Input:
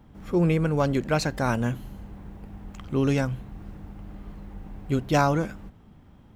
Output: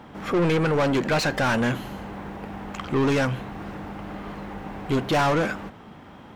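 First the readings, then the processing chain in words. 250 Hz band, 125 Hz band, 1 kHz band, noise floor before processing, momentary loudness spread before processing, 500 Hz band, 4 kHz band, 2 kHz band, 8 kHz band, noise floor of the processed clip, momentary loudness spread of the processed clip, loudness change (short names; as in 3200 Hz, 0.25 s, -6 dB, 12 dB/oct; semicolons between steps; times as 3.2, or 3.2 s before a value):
+1.5 dB, -1.5 dB, +3.0 dB, -53 dBFS, 20 LU, +3.0 dB, +6.5 dB, +6.5 dB, +1.5 dB, -46 dBFS, 15 LU, +1.5 dB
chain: overdrive pedal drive 31 dB, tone 2700 Hz, clips at -7 dBFS; gain -6.5 dB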